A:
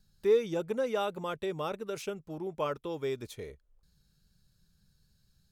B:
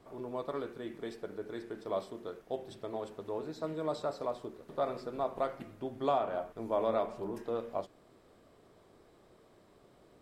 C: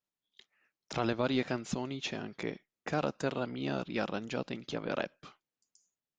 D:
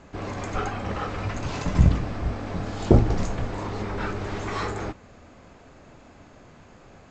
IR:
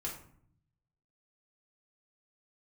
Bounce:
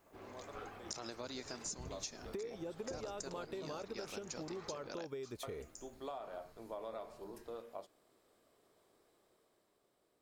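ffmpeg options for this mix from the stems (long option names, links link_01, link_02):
-filter_complex "[0:a]lowshelf=frequency=450:gain=8,acompressor=threshold=-35dB:ratio=4,adelay=2100,volume=1.5dB[link_01];[1:a]dynaudnorm=framelen=140:gausssize=13:maxgain=5.5dB,crystalizer=i=2:c=0,volume=-15dB,asplit=3[link_02][link_03][link_04];[link_02]atrim=end=3.7,asetpts=PTS-STARTPTS,afade=type=out:start_time=3.696:duration=0.004:curve=hsin[link_05];[link_03]atrim=start=3.7:end=5.43,asetpts=PTS-STARTPTS,volume=0[link_06];[link_04]atrim=start=5.43,asetpts=PTS-STARTPTS,afade=type=in:duration=0.004:curve=hsin[link_07];[link_05][link_06][link_07]concat=n=3:v=0:a=1[link_08];[2:a]aexciter=amount=13.3:drive=4.2:freq=4700,volume=-8dB[link_09];[3:a]volume=-19.5dB[link_10];[link_01][link_08][link_09][link_10]amix=inputs=4:normalize=0,bass=frequency=250:gain=-8,treble=frequency=4000:gain=-1,acompressor=threshold=-41dB:ratio=6"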